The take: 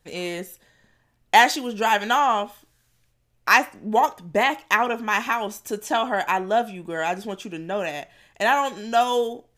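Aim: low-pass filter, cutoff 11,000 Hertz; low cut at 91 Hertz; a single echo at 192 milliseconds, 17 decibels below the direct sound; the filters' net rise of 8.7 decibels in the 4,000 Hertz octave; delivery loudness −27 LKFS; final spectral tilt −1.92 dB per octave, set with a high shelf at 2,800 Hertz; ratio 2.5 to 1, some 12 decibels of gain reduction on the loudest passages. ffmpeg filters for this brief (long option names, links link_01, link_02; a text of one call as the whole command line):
ffmpeg -i in.wav -af "highpass=91,lowpass=11000,highshelf=frequency=2800:gain=7,equalizer=frequency=4000:width_type=o:gain=6,acompressor=threshold=-25dB:ratio=2.5,aecho=1:1:192:0.141" out.wav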